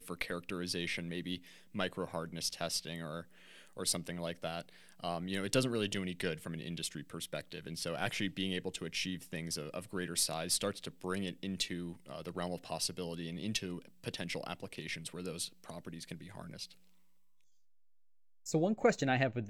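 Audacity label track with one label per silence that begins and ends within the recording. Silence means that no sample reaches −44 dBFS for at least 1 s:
16.710000	18.460000	silence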